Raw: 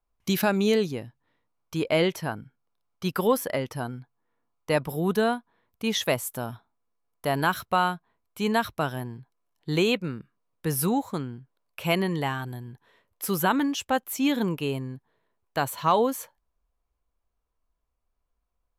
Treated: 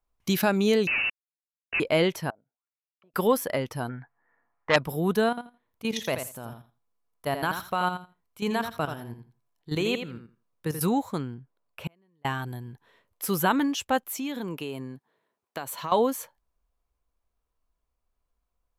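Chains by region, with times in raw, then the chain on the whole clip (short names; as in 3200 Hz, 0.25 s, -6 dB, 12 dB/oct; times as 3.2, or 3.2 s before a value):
0.87–1.8 tilt shelf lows +7.5 dB, about 850 Hz + companded quantiser 2-bit + inverted band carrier 2800 Hz
2.3–3.14 compressor 4:1, threshold -35 dBFS + auto-wah 630–3300 Hz, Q 8.4, down, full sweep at -43 dBFS + air absorption 340 m
3.89–4.76 synth low-pass 1800 Hz, resonance Q 7.3 + bell 750 Hz +8 dB 0.9 oct + core saturation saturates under 2200 Hz
5.29–10.81 level quantiser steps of 13 dB + feedback echo 83 ms, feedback 16%, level -8 dB
11.34–12.25 high shelf 2500 Hz -9 dB + flipped gate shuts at -22 dBFS, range -40 dB
14.09–15.92 HPF 180 Hz + compressor, threshold -29 dBFS
whole clip: dry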